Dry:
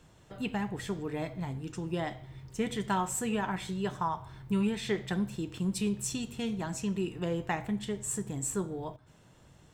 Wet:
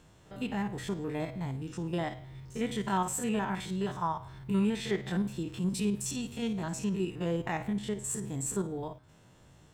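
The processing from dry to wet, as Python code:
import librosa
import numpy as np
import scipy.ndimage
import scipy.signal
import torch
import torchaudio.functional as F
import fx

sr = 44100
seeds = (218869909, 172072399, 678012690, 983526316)

y = fx.spec_steps(x, sr, hold_ms=50)
y = F.gain(torch.from_numpy(y), 1.5).numpy()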